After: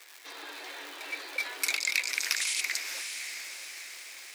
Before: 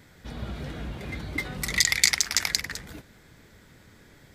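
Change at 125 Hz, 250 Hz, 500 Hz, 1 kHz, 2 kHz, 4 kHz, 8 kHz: under -40 dB, -17.5 dB, -6.5 dB, -3.0 dB, -2.5 dB, -6.0 dB, -6.0 dB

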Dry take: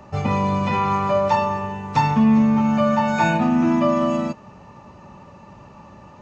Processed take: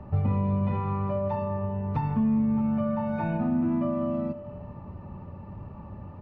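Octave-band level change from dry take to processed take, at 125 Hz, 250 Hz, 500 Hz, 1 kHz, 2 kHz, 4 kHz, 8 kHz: -2.5 dB, -7.5 dB, -9.0 dB, -14.0 dB, -17.5 dB, under -20 dB, n/a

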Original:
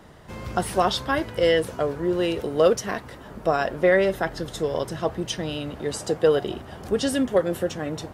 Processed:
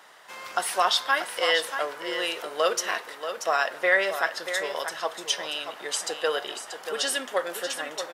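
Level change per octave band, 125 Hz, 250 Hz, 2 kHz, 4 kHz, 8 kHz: under -25 dB, -16.0 dB, +4.0 dB, +4.5 dB, +4.5 dB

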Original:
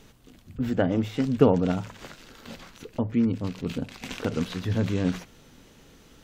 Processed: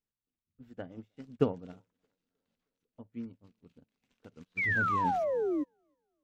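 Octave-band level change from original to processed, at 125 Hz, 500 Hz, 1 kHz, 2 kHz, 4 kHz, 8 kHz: -14.0 dB, -7.0 dB, +3.0 dB, +5.5 dB, -17.5 dB, under -15 dB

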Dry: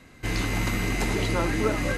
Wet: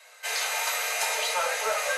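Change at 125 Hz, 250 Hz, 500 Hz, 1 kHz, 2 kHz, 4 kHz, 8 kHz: under -40 dB, under -35 dB, -3.0 dB, +3.0 dB, +2.0 dB, +5.0 dB, +8.0 dB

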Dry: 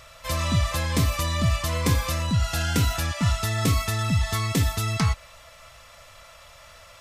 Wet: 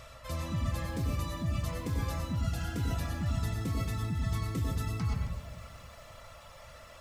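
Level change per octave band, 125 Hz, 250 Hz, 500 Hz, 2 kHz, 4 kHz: -8.5, -8.0, -10.0, -13.5, -15.5 dB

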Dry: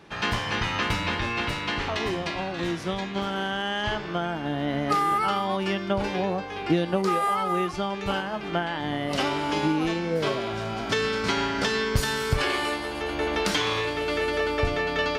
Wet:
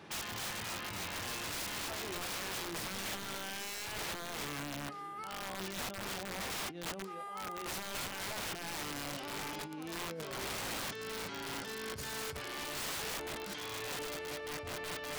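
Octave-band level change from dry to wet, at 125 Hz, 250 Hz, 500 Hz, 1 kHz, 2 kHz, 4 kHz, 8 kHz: -17.0, -17.5, -16.5, -15.5, -12.5, -10.0, -1.0 dB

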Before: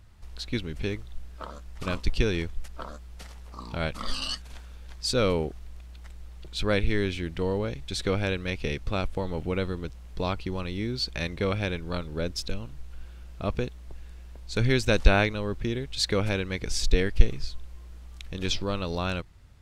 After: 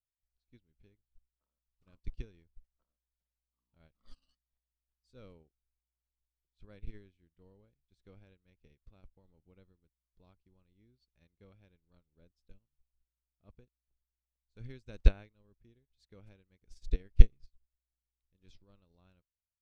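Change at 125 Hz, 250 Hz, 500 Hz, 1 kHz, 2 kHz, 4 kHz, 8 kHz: -10.5 dB, -22.0 dB, -25.0 dB, -30.5 dB, -26.0 dB, -29.0 dB, under -30 dB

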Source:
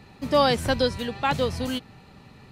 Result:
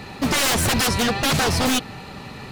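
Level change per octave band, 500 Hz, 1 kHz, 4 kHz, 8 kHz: -2.5, +2.0, +7.5, +19.0 dB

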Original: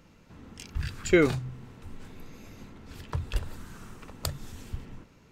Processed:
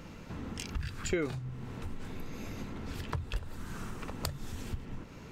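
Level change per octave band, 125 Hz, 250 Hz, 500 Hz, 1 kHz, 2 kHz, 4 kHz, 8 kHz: -3.5, -7.5, -10.0, -2.5, -8.5, -3.0, -3.0 dB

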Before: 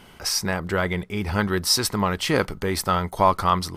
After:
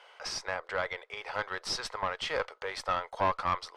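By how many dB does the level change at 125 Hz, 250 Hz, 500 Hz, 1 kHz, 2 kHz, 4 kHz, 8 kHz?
-20.5, -22.5, -10.5, -9.0, -7.0, -11.5, -16.0 dB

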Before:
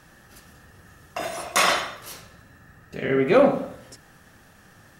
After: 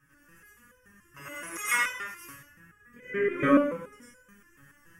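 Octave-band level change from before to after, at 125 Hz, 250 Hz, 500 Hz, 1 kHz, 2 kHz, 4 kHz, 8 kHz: -8.5, -1.0, -8.5, -7.5, -2.5, -13.5, -6.0 dB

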